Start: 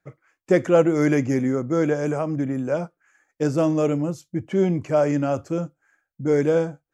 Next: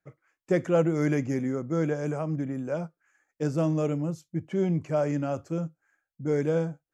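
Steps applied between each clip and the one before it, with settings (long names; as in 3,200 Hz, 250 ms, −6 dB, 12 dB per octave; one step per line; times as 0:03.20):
dynamic equaliser 160 Hz, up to +8 dB, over −43 dBFS, Q 6.3
level −7 dB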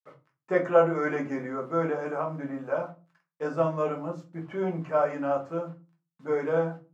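bit reduction 10 bits
resonant band-pass 1,100 Hz, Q 1.7
rectangular room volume 120 cubic metres, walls furnished, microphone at 1.5 metres
level +6.5 dB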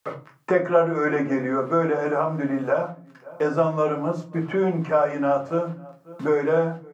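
slap from a distant wall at 93 metres, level −30 dB
multiband upward and downward compressor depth 70%
level +6 dB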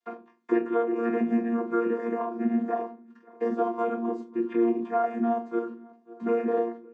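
channel vocoder with a chord as carrier bare fifth, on A#3
level −3.5 dB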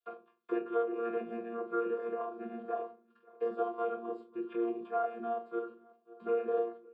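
phaser with its sweep stopped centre 1,300 Hz, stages 8
level −4 dB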